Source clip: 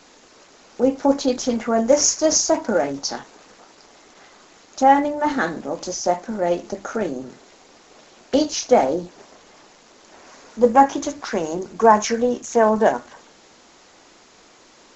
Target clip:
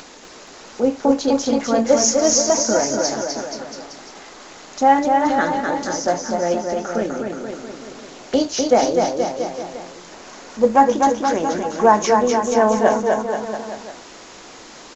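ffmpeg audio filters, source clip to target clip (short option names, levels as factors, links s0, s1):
-filter_complex "[0:a]acompressor=mode=upward:threshold=0.0224:ratio=2.5,asplit=2[s0][s1];[s1]aecho=0:1:250|475|677.5|859.8|1024:0.631|0.398|0.251|0.158|0.1[s2];[s0][s2]amix=inputs=2:normalize=0"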